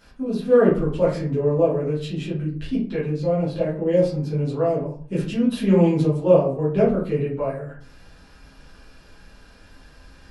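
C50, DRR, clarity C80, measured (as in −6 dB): 5.5 dB, −9.5 dB, 11.0 dB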